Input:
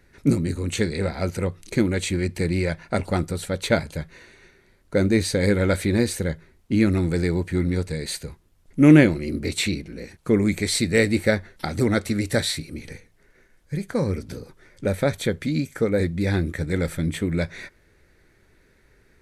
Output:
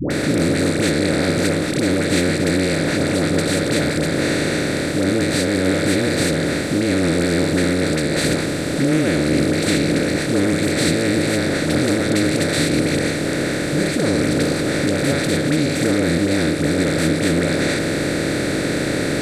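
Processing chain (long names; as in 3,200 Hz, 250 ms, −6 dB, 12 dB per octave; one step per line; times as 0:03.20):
compressor on every frequency bin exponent 0.2
brickwall limiter −5 dBFS, peak gain reduction 9.5 dB
all-pass dispersion highs, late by 106 ms, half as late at 650 Hz
level −3 dB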